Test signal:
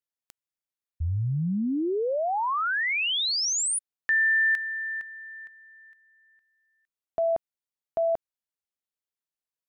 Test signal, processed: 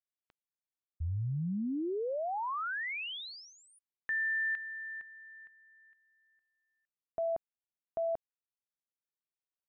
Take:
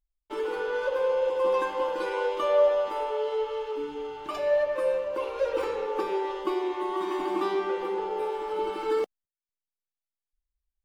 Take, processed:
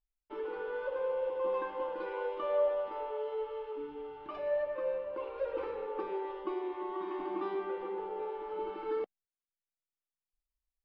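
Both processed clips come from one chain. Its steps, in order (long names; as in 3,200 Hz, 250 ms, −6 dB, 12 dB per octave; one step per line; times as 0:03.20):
high-frequency loss of the air 370 metres
level −7 dB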